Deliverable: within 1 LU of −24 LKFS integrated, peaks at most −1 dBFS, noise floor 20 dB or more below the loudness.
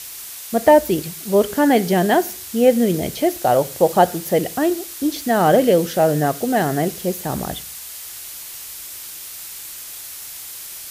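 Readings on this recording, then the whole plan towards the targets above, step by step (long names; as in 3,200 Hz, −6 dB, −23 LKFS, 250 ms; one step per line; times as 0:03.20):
background noise floor −35 dBFS; target noise floor −38 dBFS; integrated loudness −18.0 LKFS; sample peak −1.5 dBFS; target loudness −24.0 LKFS
→ noise reduction from a noise print 6 dB
level −6 dB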